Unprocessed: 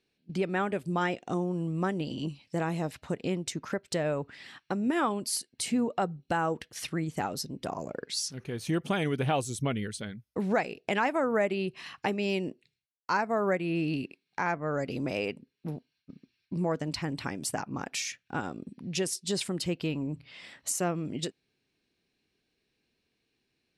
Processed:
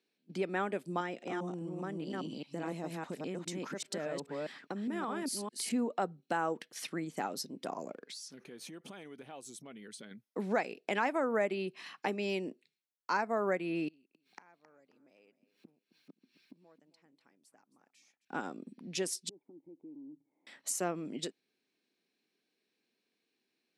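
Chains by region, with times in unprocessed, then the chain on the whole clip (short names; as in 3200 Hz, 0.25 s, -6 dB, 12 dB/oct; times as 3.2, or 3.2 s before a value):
1–5.72 reverse delay 0.204 s, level -2 dB + low shelf 160 Hz +7 dB + compressor 4:1, threshold -29 dBFS
7.92–10.11 compressor 16:1, threshold -38 dBFS + hard clip -33.5 dBFS
13.88–18.25 upward compressor, threshold -51 dBFS + flipped gate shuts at -35 dBFS, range -29 dB + feedback echo 0.267 s, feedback 32%, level -15 dB
19.29–20.47 bell 210 Hz -12.5 dB 0.38 oct + compressor 5:1, threshold -37 dBFS + vocal tract filter u
whole clip: HPF 200 Hz 24 dB/oct; notch 2800 Hz, Q 25; gain -4 dB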